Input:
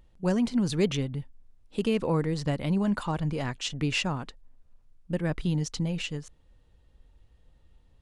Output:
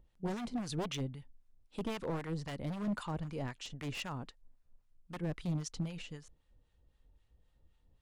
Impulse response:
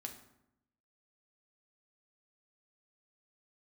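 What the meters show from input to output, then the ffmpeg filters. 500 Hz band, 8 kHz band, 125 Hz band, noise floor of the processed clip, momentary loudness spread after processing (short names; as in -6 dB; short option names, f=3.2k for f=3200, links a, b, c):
-11.5 dB, -9.0 dB, -10.0 dB, -74 dBFS, 11 LU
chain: -filter_complex "[0:a]aeval=exprs='0.075*(abs(mod(val(0)/0.075+3,4)-2)-1)':c=same,acrossover=split=860[a][b];[a]aeval=exprs='val(0)*(1-0.7/2+0.7/2*cos(2*PI*3.8*n/s))':c=same[c];[b]aeval=exprs='val(0)*(1-0.7/2-0.7/2*cos(2*PI*3.8*n/s))':c=same[d];[c][d]amix=inputs=2:normalize=0,volume=-5.5dB"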